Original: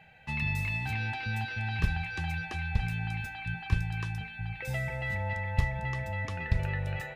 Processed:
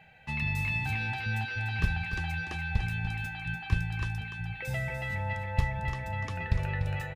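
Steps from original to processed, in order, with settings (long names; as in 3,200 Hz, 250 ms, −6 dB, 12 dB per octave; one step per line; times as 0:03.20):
single-tap delay 293 ms −9.5 dB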